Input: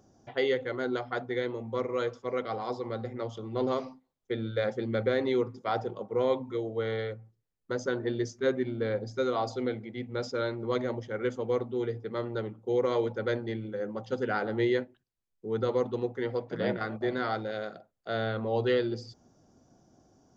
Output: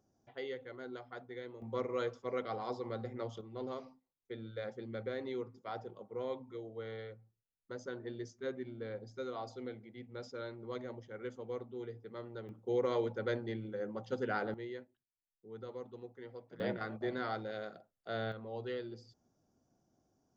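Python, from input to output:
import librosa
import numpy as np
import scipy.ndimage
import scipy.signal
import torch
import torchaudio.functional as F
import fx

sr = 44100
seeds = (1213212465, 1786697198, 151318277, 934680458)

y = fx.gain(x, sr, db=fx.steps((0.0, -14.5), (1.62, -5.5), (3.41, -12.5), (12.49, -5.5), (14.54, -17.5), (16.6, -7.0), (18.32, -14.0)))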